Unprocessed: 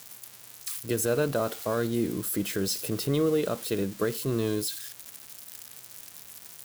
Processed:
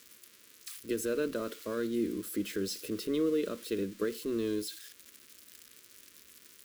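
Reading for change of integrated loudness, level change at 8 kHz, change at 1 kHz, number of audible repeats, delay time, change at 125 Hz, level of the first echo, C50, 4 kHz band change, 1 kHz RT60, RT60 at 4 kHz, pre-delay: -5.5 dB, -10.0 dB, -10.5 dB, none, none, -15.0 dB, none, none, -7.0 dB, none, none, none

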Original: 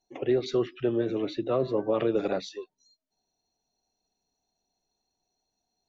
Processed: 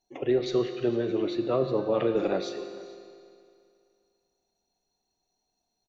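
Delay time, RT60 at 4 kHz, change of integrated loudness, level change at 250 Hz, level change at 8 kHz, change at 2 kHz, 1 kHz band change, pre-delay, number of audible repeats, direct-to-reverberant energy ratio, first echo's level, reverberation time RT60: 0.453 s, 2.2 s, +0.5 dB, +0.5 dB, n/a, +1.0 dB, +1.0 dB, 6 ms, 1, 6.5 dB, -22.0 dB, 2.4 s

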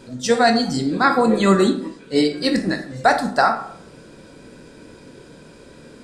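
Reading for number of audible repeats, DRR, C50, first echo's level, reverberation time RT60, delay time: none, 5.0 dB, 9.5 dB, none, 0.60 s, none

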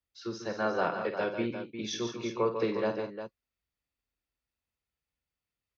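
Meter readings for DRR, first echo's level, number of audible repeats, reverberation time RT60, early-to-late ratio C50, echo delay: none, -9.0 dB, 4, none, none, 51 ms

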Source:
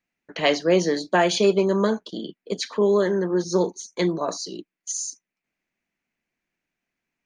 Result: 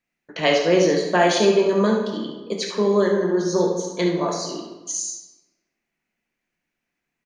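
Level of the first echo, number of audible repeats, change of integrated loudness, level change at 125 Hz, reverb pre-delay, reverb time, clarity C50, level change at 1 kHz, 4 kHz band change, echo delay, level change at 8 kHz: -8.0 dB, 1, +2.0 dB, +1.5 dB, 12 ms, 1.2 s, 3.0 dB, +3.0 dB, +2.0 dB, 70 ms, +2.5 dB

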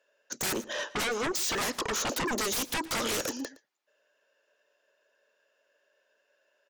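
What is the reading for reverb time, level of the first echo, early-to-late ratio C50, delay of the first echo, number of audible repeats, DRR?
none, -19.5 dB, none, 0.115 s, 1, none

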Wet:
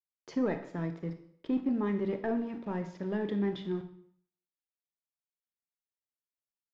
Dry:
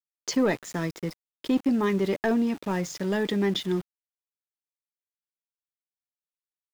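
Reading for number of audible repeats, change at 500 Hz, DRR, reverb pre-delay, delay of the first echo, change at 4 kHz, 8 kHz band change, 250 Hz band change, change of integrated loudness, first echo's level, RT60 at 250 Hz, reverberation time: none, -7.0 dB, 7.0 dB, 24 ms, none, -17.0 dB, under -25 dB, -6.0 dB, -7.0 dB, none, 0.55 s, 0.60 s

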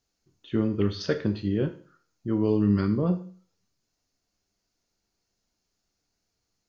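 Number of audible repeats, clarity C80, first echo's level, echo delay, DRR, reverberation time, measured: none, 16.5 dB, none, none, 6.0 dB, 0.40 s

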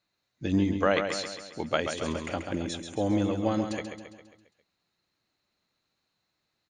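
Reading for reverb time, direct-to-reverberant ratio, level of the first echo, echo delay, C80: none, none, -7.0 dB, 0.135 s, none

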